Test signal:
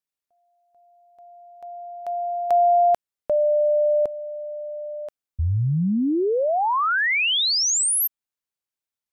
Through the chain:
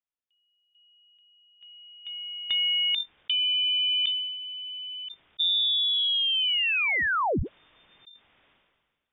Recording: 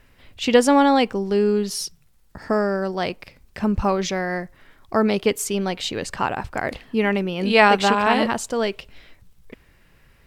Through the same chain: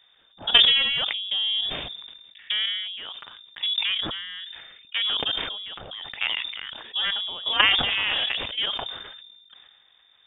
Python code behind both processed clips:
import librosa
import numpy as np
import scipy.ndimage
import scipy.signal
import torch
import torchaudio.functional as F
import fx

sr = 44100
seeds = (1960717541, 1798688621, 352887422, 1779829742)

y = fx.cheby_harmonics(x, sr, harmonics=(3, 4), levels_db=(-24, -13), full_scale_db=-1.0)
y = fx.level_steps(y, sr, step_db=12)
y = fx.freq_invert(y, sr, carrier_hz=3600)
y = fx.sustainer(y, sr, db_per_s=37.0)
y = y * 10.0 ** (-1.0 / 20.0)